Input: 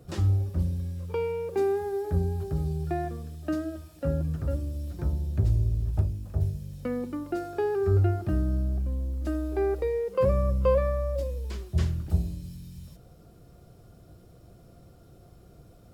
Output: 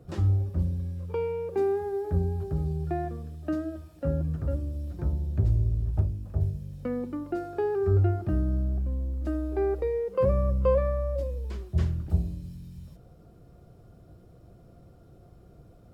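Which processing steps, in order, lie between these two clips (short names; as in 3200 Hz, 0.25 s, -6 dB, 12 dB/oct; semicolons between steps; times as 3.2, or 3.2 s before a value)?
high shelf 2400 Hz -9 dB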